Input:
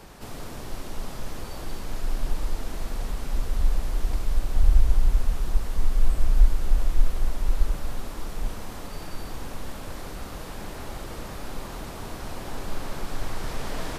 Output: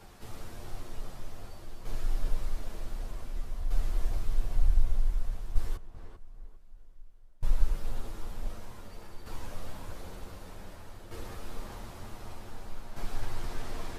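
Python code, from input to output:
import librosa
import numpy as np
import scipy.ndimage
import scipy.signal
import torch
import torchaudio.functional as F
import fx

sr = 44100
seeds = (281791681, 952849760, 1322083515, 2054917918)

y = fx.gate_flip(x, sr, shuts_db=-25.0, range_db=-24, at=(5.74, 7.43))
y = fx.tremolo_shape(y, sr, shape='saw_down', hz=0.54, depth_pct=65)
y = fx.chorus_voices(y, sr, voices=6, hz=0.23, base_ms=10, depth_ms=1.6, mix_pct=45)
y = fx.echo_tape(y, sr, ms=395, feedback_pct=32, wet_db=-5.0, lp_hz=1400.0, drive_db=4.0, wow_cents=33)
y = y * librosa.db_to_amplitude(-3.5)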